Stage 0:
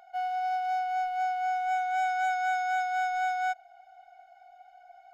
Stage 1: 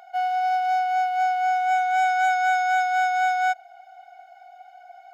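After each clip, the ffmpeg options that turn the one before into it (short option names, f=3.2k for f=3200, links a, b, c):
-af "highpass=f=360:p=1,volume=8dB"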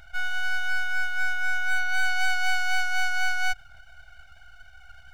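-af "aeval=exprs='abs(val(0))':c=same"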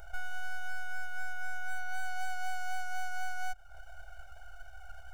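-af "equalizer=f=125:t=o:w=1:g=-11,equalizer=f=250:t=o:w=1:g=-10,equalizer=f=500:t=o:w=1:g=7,equalizer=f=2k:t=o:w=1:g=-11,equalizer=f=4k:t=o:w=1:g=-10,acompressor=threshold=-36dB:ratio=3,volume=4dB"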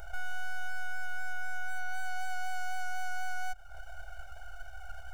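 -af "alimiter=level_in=4.5dB:limit=-24dB:level=0:latency=1:release=55,volume=-4.5dB,volume=4dB"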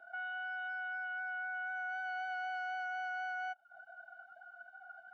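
-af "afftdn=nr=20:nf=-43,highpass=f=290:w=0.5412,highpass=f=290:w=1.3066,equalizer=f=450:t=q:w=4:g=-8,equalizer=f=1.1k:t=q:w=4:g=-7,equalizer=f=2.4k:t=q:w=4:g=-4,lowpass=f=4k:w=0.5412,lowpass=f=4k:w=1.3066,volume=1dB"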